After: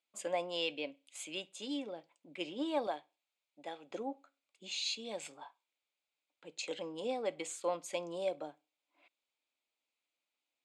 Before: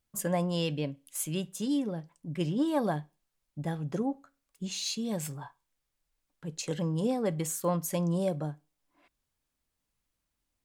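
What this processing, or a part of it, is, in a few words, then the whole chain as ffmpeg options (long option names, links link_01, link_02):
phone speaker on a table: -filter_complex "[0:a]highpass=frequency=340:width=0.5412,highpass=frequency=340:width=1.3066,equalizer=frequency=400:width_type=q:width=4:gain=-7,equalizer=frequency=1100:width_type=q:width=4:gain=-5,equalizer=frequency=1700:width_type=q:width=4:gain=-8,equalizer=frequency=2400:width_type=q:width=4:gain=8,equalizer=frequency=3600:width_type=q:width=4:gain=4,equalizer=frequency=5700:width_type=q:width=4:gain=-9,lowpass=frequency=7300:width=0.5412,lowpass=frequency=7300:width=1.3066,asettb=1/sr,asplit=3[link_01][link_02][link_03];[link_01]atrim=end=2.874[link_04];[link_02]atrim=start=2.87:end=3.91,asetpts=PTS-STARTPTS,afade=type=in:duration=0.004:curve=qsin,afade=type=out:start_time=1.036:duration=0.004:curve=qsin,highpass=frequency=370:poles=1[link_05];[link_03]atrim=start=3.906[link_06];[link_04][link_05]acrossfade=duration=0.004:curve1=hsin:curve2=qsin[link_07];[link_07][link_06]acrossfade=duration=0.004:curve1=qsin:curve2=hsin,volume=-2.5dB"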